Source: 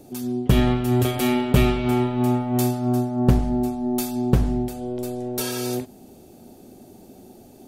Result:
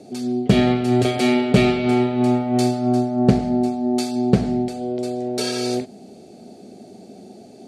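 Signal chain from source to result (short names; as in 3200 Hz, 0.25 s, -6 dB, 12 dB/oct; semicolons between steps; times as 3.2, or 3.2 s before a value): speaker cabinet 120–9000 Hz, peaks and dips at 200 Hz +8 dB, 430 Hz +6 dB, 680 Hz +8 dB, 990 Hz -7 dB, 2200 Hz +5 dB, 4400 Hz +8 dB; gain +1 dB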